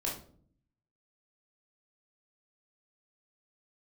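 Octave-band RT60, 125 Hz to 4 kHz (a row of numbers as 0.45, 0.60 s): 1.0, 0.90, 0.60, 0.45, 0.35, 0.30 s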